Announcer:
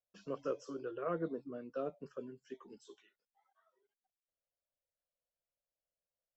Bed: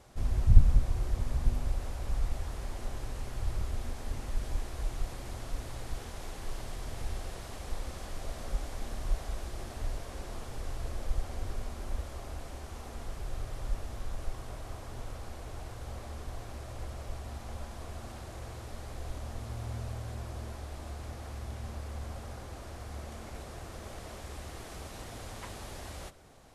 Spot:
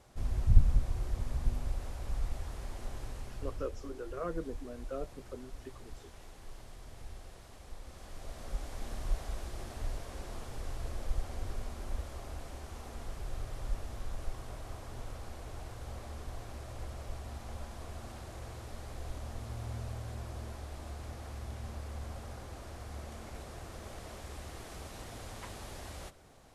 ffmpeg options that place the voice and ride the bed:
-filter_complex "[0:a]adelay=3150,volume=0.944[s0];[1:a]volume=1.78,afade=t=out:st=3.07:d=0.63:silence=0.446684,afade=t=in:st=7.81:d=1.12:silence=0.375837[s1];[s0][s1]amix=inputs=2:normalize=0"

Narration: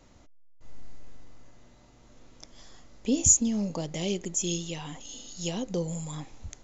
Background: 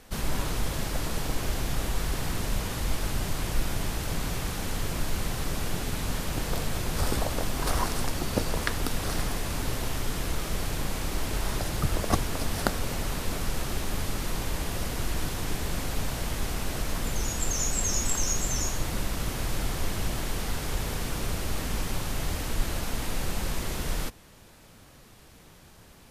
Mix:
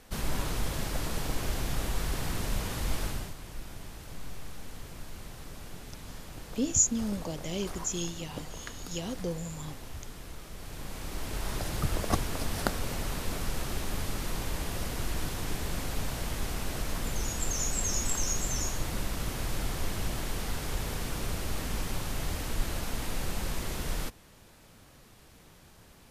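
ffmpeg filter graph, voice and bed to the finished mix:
-filter_complex "[0:a]adelay=3500,volume=0.631[s0];[1:a]volume=2.66,afade=t=out:st=3.02:d=0.33:silence=0.266073,afade=t=in:st=10.56:d=1.18:silence=0.281838[s1];[s0][s1]amix=inputs=2:normalize=0"

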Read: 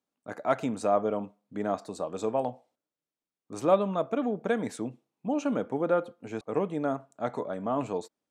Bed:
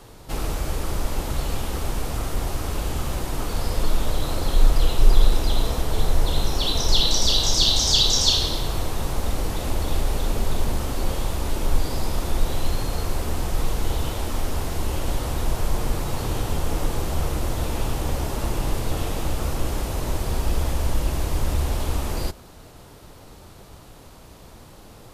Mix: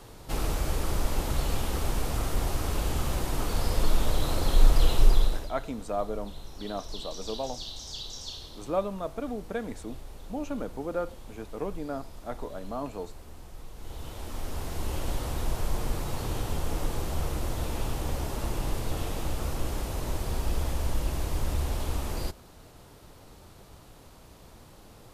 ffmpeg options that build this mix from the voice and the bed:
-filter_complex "[0:a]adelay=5050,volume=0.531[s0];[1:a]volume=4.22,afade=t=out:st=4.96:d=0.55:silence=0.11885,afade=t=in:st=13.73:d=1.22:silence=0.177828[s1];[s0][s1]amix=inputs=2:normalize=0"

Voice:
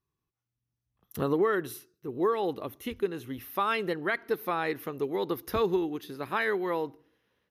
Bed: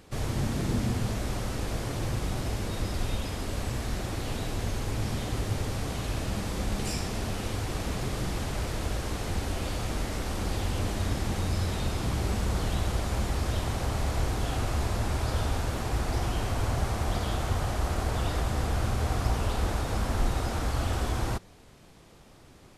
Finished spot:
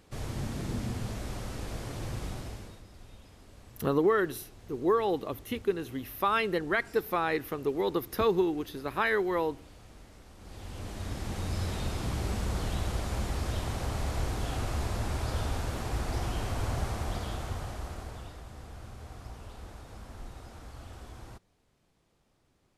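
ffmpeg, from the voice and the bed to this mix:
-filter_complex "[0:a]adelay=2650,volume=1.12[s0];[1:a]volume=3.76,afade=t=out:st=2.26:d=0.56:silence=0.177828,afade=t=in:st=10.38:d=1.27:silence=0.133352,afade=t=out:st=16.78:d=1.59:silence=0.199526[s1];[s0][s1]amix=inputs=2:normalize=0"

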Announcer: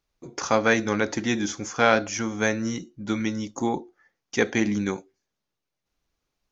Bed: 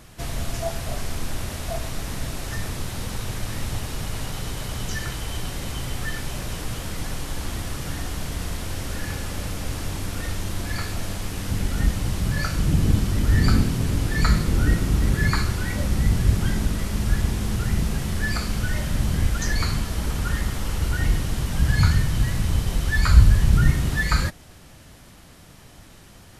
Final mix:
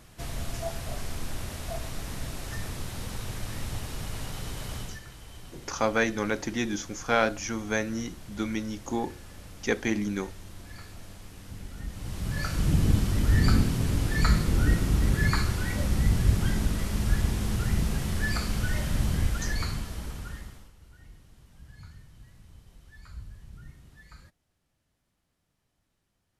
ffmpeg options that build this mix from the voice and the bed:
-filter_complex "[0:a]adelay=5300,volume=0.596[s0];[1:a]volume=2.24,afade=t=out:st=4.76:d=0.25:silence=0.298538,afade=t=in:st=11.88:d=0.8:silence=0.223872,afade=t=out:st=19.02:d=1.7:silence=0.0473151[s1];[s0][s1]amix=inputs=2:normalize=0"

